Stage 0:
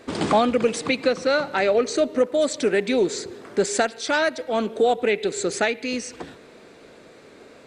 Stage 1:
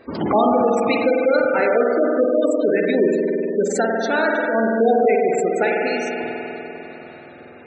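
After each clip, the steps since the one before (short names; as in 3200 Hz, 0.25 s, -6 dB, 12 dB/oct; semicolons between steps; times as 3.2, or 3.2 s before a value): spring tank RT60 3.8 s, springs 49 ms, chirp 45 ms, DRR -3 dB; spectral gate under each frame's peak -20 dB strong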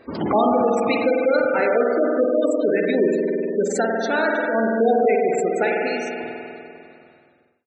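ending faded out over 1.89 s; gain -1.5 dB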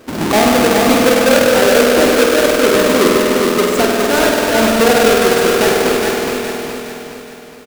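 half-waves squared off; on a send: feedback echo 0.416 s, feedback 46%, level -4 dB; on the sum: gain +2.5 dB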